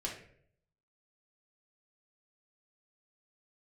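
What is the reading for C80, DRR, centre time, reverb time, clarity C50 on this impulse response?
10.0 dB, −2.0 dB, 29 ms, 0.60 s, 5.5 dB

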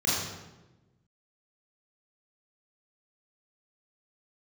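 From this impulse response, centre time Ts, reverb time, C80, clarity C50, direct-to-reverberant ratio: 83 ms, 1.1 s, 1.5 dB, −1.0 dB, −8.0 dB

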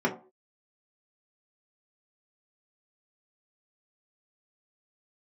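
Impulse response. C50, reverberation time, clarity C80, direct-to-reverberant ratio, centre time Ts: 11.5 dB, non-exponential decay, 16.5 dB, −3.5 dB, 14 ms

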